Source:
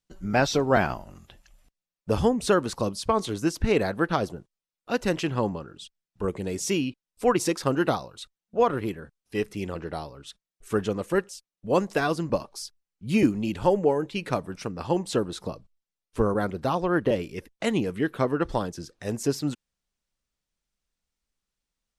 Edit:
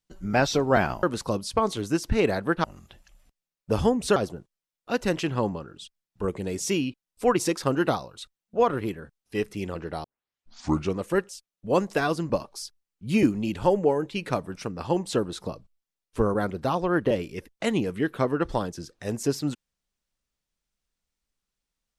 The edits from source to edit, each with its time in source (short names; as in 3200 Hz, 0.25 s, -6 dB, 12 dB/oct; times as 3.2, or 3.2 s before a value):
1.03–2.55 move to 4.16
10.04 tape start 0.94 s